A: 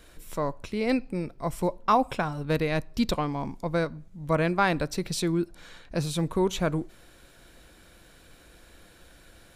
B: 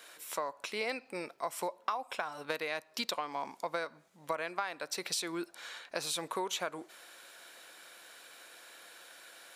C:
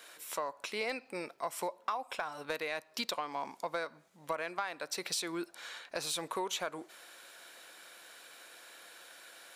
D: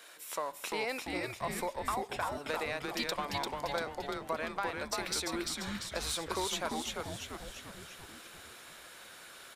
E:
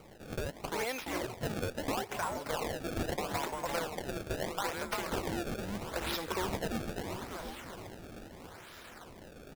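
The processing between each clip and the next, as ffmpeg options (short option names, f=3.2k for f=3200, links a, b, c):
-af "highpass=710,acompressor=threshold=-35dB:ratio=16,volume=4dB"
-af "asoftclip=type=tanh:threshold=-21dB"
-filter_complex "[0:a]asplit=9[a][b][c][d][e][f][g][h][i];[b]adelay=344,afreqshift=-140,volume=-3dB[j];[c]adelay=688,afreqshift=-280,volume=-8dB[k];[d]adelay=1032,afreqshift=-420,volume=-13.1dB[l];[e]adelay=1376,afreqshift=-560,volume=-18.1dB[m];[f]adelay=1720,afreqshift=-700,volume=-23.1dB[n];[g]adelay=2064,afreqshift=-840,volume=-28.2dB[o];[h]adelay=2408,afreqshift=-980,volume=-33.2dB[p];[i]adelay=2752,afreqshift=-1120,volume=-38.3dB[q];[a][j][k][l][m][n][o][p][q]amix=inputs=9:normalize=0"
-filter_complex "[0:a]asplit=2[a][b];[b]adelay=734,lowpass=f=2k:p=1,volume=-9dB,asplit=2[c][d];[d]adelay=734,lowpass=f=2k:p=1,volume=0.41,asplit=2[e][f];[f]adelay=734,lowpass=f=2k:p=1,volume=0.41,asplit=2[g][h];[h]adelay=734,lowpass=f=2k:p=1,volume=0.41,asplit=2[i][j];[j]adelay=734,lowpass=f=2k:p=1,volume=0.41[k];[a][c][e][g][i][k]amix=inputs=6:normalize=0,acrusher=samples=25:mix=1:aa=0.000001:lfo=1:lforange=40:lforate=0.77"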